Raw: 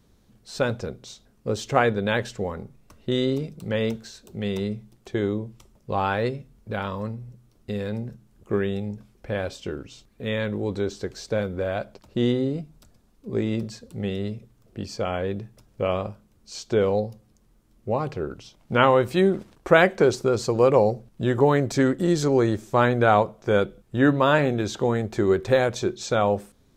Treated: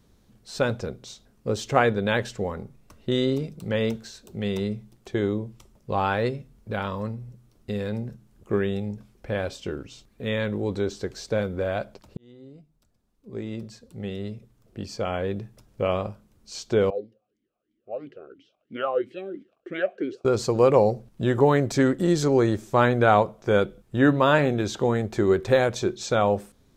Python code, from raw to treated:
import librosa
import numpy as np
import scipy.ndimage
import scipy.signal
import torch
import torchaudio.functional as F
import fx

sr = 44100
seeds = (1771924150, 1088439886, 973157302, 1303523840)

y = fx.vowel_sweep(x, sr, vowels='a-i', hz=3.0, at=(16.9, 20.25))
y = fx.edit(y, sr, fx.fade_in_span(start_s=12.17, length_s=3.25), tone=tone)